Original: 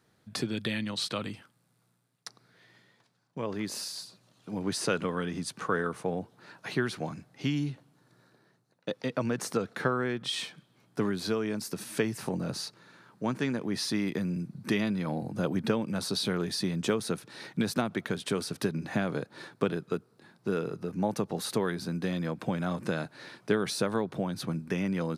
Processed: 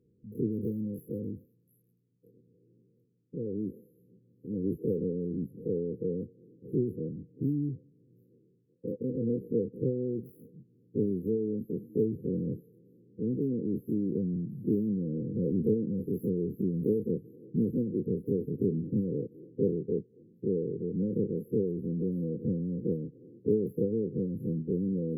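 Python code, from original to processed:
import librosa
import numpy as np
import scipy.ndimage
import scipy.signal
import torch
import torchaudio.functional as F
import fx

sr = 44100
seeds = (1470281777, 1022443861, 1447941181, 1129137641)

p1 = fx.spec_dilate(x, sr, span_ms=60)
p2 = fx.curve_eq(p1, sr, hz=(1600.0, 3500.0, 7400.0), db=(0, 13, -26))
p3 = 10.0 ** (-24.0 / 20.0) * np.tanh(p2 / 10.0 ** (-24.0 / 20.0))
p4 = p2 + (p3 * librosa.db_to_amplitude(-11.5))
p5 = fx.brickwall_bandstop(p4, sr, low_hz=520.0, high_hz=11000.0)
p6 = p5 + fx.echo_stepped(p5, sr, ms=244, hz=1600.0, octaves=1.4, feedback_pct=70, wet_db=-6, dry=0)
y = p6 * librosa.db_to_amplitude(-3.0)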